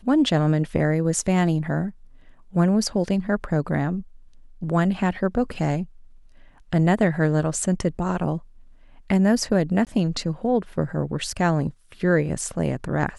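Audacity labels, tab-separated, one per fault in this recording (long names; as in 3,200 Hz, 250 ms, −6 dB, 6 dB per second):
9.850000	9.870000	drop-out 18 ms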